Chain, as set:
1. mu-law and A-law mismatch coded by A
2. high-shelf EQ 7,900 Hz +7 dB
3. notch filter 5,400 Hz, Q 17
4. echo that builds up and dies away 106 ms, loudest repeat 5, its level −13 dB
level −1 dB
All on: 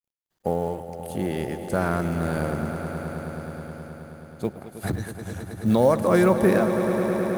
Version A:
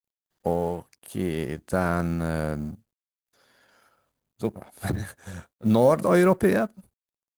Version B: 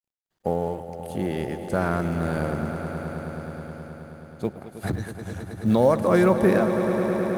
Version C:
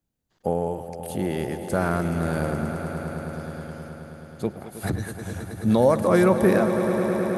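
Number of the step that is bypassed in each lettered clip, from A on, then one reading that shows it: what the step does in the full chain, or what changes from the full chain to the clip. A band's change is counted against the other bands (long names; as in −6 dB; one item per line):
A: 4, echo-to-direct ratio −3.5 dB to none audible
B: 2, 8 kHz band −4.0 dB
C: 1, distortion level −27 dB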